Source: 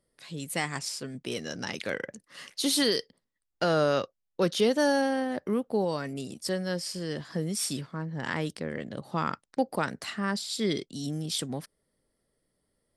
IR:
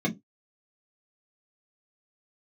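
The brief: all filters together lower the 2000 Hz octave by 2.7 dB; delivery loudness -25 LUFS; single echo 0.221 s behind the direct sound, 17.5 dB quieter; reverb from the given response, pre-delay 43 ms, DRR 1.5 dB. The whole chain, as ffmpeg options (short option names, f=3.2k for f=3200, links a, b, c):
-filter_complex "[0:a]equalizer=f=2k:t=o:g=-3.5,aecho=1:1:221:0.133,asplit=2[a][b];[1:a]atrim=start_sample=2205,adelay=43[c];[b][c]afir=irnorm=-1:irlink=0,volume=-10.5dB[d];[a][d]amix=inputs=2:normalize=0,volume=-2dB"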